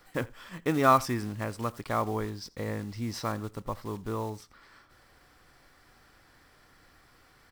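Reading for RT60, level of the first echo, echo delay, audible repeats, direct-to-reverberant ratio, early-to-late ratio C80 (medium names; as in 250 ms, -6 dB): no reverb, -23.5 dB, 83 ms, 1, no reverb, no reverb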